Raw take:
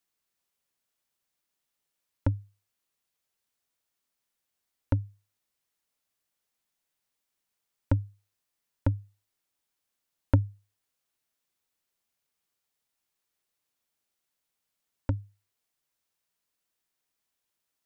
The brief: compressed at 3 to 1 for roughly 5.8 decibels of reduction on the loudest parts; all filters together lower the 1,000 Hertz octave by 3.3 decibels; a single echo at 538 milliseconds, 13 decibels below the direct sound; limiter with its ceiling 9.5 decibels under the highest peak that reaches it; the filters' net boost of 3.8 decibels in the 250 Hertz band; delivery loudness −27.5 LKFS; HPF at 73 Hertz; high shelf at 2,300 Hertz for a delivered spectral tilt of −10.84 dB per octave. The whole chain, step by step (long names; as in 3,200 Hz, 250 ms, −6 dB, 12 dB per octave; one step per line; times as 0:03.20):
high-pass filter 73 Hz
parametric band 250 Hz +4.5 dB
parametric band 1,000 Hz −3.5 dB
high-shelf EQ 2,300 Hz −3 dB
downward compressor 3 to 1, threshold −24 dBFS
brickwall limiter −21.5 dBFS
single-tap delay 538 ms −13 dB
level +14.5 dB